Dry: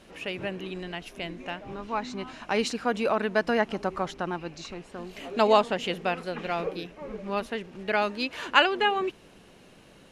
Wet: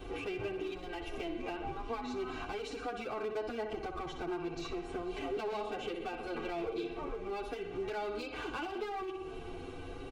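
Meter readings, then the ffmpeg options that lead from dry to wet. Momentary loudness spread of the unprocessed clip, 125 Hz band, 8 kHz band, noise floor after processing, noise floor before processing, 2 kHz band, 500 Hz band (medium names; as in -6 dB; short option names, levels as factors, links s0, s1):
16 LU, -8.5 dB, -12.0 dB, -45 dBFS, -54 dBFS, -14.0 dB, -9.0 dB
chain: -filter_complex "[0:a]lowshelf=f=170:g=5.5,aecho=1:1:61|122|183|244|305:0.266|0.122|0.0563|0.0259|0.0119,acompressor=threshold=0.01:ratio=2,aecho=1:1:2.6:0.83,asoftclip=type=tanh:threshold=0.0316,aresample=22050,aresample=44100,equalizer=f=7400:w=0.44:g=-12.5,acrossover=split=420|1900[s0][s1][s2];[s0]acompressor=threshold=0.00398:ratio=4[s3];[s1]acompressor=threshold=0.00447:ratio=4[s4];[s2]acompressor=threshold=0.00224:ratio=4[s5];[s3][s4][s5]amix=inputs=3:normalize=0,asoftclip=type=hard:threshold=0.01,bandreject=f=1800:w=5.3,asplit=2[s6][s7];[s7]adelay=8,afreqshift=0.4[s8];[s6][s8]amix=inputs=2:normalize=1,volume=3.16"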